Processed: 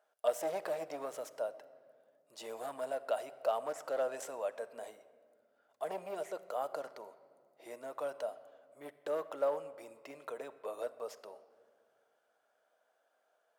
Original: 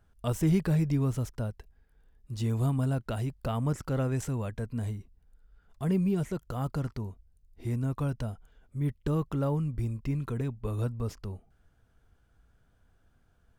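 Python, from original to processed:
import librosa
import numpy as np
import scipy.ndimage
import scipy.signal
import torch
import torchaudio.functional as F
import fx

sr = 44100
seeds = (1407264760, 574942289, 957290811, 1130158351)

y = np.clip(x, -10.0 ** (-23.0 / 20.0), 10.0 ** (-23.0 / 20.0))
y = fx.ladder_highpass(y, sr, hz=540.0, resonance_pct=65)
y = fx.room_shoebox(y, sr, seeds[0], volume_m3=3600.0, walls='mixed', distance_m=0.52)
y = y * librosa.db_to_amplitude(6.5)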